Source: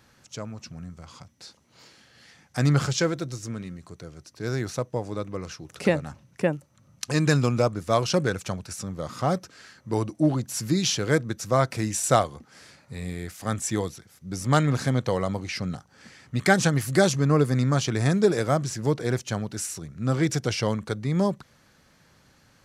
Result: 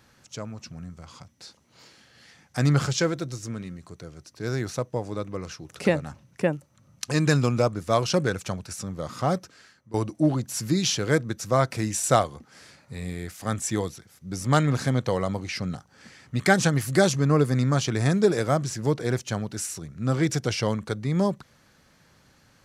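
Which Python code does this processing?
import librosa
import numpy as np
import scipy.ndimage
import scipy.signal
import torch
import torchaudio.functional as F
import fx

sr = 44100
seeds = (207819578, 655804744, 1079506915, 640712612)

y = fx.edit(x, sr, fx.fade_out_to(start_s=9.35, length_s=0.59, floor_db=-18.5), tone=tone)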